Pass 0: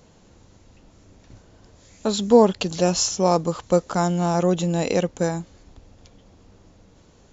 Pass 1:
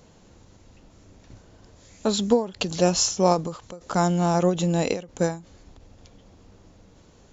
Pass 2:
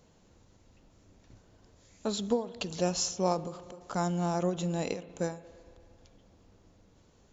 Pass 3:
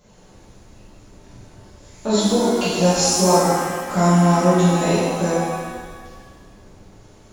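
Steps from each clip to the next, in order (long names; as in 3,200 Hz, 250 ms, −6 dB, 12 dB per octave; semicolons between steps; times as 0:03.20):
every ending faded ahead of time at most 150 dB per second
spring reverb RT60 2.5 s, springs 38/57 ms, chirp 30 ms, DRR 16 dB; level −9 dB
reverb with rising layers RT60 1.5 s, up +7 semitones, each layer −8 dB, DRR −10.5 dB; level +3.5 dB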